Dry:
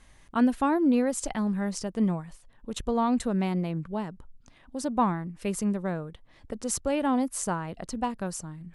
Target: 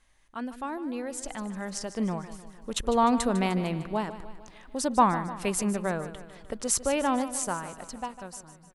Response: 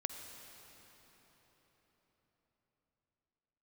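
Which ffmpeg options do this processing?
-af "equalizer=f=130:w=0.32:g=-8,dynaudnorm=f=550:g=7:m=16.5dB,aecho=1:1:151|302|453|604|755|906:0.211|0.118|0.0663|0.0371|0.0208|0.0116,volume=-7.5dB"

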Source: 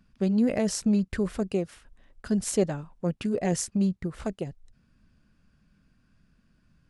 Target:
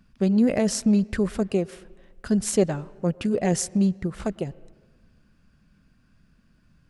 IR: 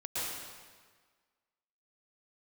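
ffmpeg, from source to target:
-filter_complex "[0:a]asplit=2[a][b];[1:a]atrim=start_sample=2205,asetrate=48510,aresample=44100,lowpass=3.5k[c];[b][c]afir=irnorm=-1:irlink=0,volume=-24.5dB[d];[a][d]amix=inputs=2:normalize=0,volume=3.5dB"

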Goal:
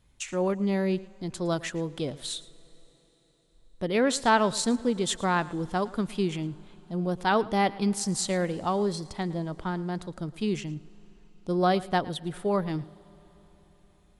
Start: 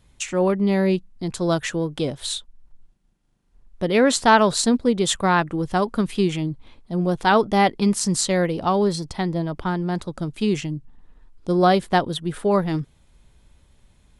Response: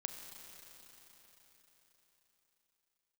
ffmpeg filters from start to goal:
-filter_complex "[0:a]asplit=2[a][b];[1:a]atrim=start_sample=2205,adelay=111[c];[b][c]afir=irnorm=-1:irlink=0,volume=-17dB[d];[a][d]amix=inputs=2:normalize=0,volume=-7dB"

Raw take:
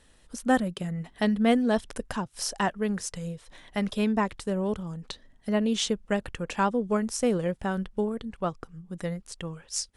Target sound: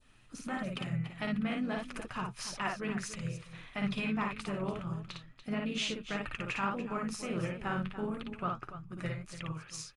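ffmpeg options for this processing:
-filter_complex "[0:a]alimiter=limit=-22.5dB:level=0:latency=1:release=134,flanger=delay=3.2:depth=8.1:regen=50:speed=1.6:shape=sinusoidal,adynamicequalizer=threshold=0.002:dfrequency=2000:dqfactor=0.94:tfrequency=2000:tqfactor=0.94:attack=5:release=100:ratio=0.375:range=2:mode=boostabove:tftype=bell,asplit=3[a][b][c];[b]asetrate=33038,aresample=44100,atempo=1.33484,volume=-14dB[d];[c]asetrate=52444,aresample=44100,atempo=0.840896,volume=-16dB[e];[a][d][e]amix=inputs=3:normalize=0,bandreject=f=5.6k:w=21,aecho=1:1:55.39|288.6:0.708|0.251,aresample=22050,aresample=44100,equalizer=f=125:t=o:w=0.33:g=11,equalizer=f=500:t=o:w=0.33:g=-5,equalizer=f=1.25k:t=o:w=0.33:g=9,equalizer=f=2.5k:t=o:w=0.33:g=10,equalizer=f=8k:t=o:w=0.33:g=-6,volume=-3dB"

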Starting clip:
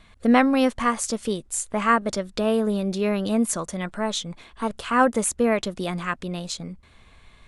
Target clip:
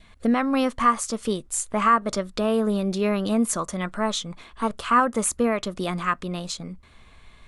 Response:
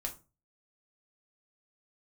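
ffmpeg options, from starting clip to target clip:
-filter_complex "[0:a]asplit=2[a][b];[1:a]atrim=start_sample=2205,atrim=end_sample=6174,asetrate=79380,aresample=44100[c];[b][c]afir=irnorm=-1:irlink=0,volume=-15dB[d];[a][d]amix=inputs=2:normalize=0,alimiter=limit=-12.5dB:level=0:latency=1:release=259,adynamicequalizer=threshold=0.00794:dfrequency=1200:dqfactor=3.9:tfrequency=1200:tqfactor=3.9:attack=5:release=100:ratio=0.375:range=4:mode=boostabove:tftype=bell"

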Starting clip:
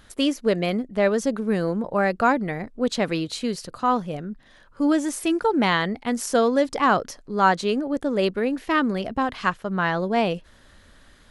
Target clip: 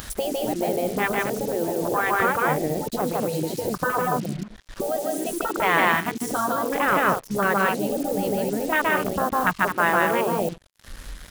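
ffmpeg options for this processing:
-af "asetnsamples=n=441:p=0,asendcmd='1.68 equalizer g -5;4.01 equalizer g -13',equalizer=f=340:w=0.4:g=-12,aecho=1:1:151.6|221.6:0.891|0.316,afwtdn=0.0398,tiltshelf=f=1.5k:g=10,alimiter=limit=-11dB:level=0:latency=1:release=365,afftfilt=real='re*lt(hypot(re,im),0.398)':imag='im*lt(hypot(re,im),0.398)':win_size=1024:overlap=0.75,highpass=f=150:p=1,acompressor=mode=upward:threshold=-27dB:ratio=2.5,acrusher=bits=7:mix=0:aa=0.5,crystalizer=i=3:c=0,volume=5.5dB"

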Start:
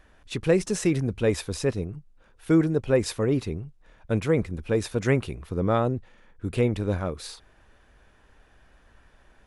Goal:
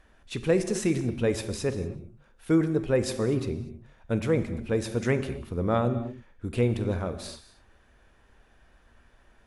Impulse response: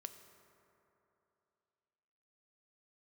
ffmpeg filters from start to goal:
-filter_complex "[1:a]atrim=start_sample=2205,atrim=end_sample=6615,asetrate=25578,aresample=44100[a];[0:a][a]afir=irnorm=-1:irlink=0"

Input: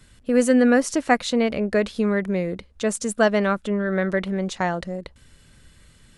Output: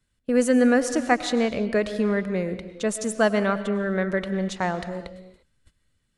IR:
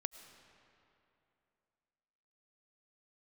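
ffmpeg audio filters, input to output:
-filter_complex "[0:a]agate=range=-19dB:threshold=-46dB:ratio=16:detection=peak[a];[1:a]atrim=start_sample=2205,afade=t=out:st=0.41:d=0.01,atrim=end_sample=18522[b];[a][b]afir=irnorm=-1:irlink=0"

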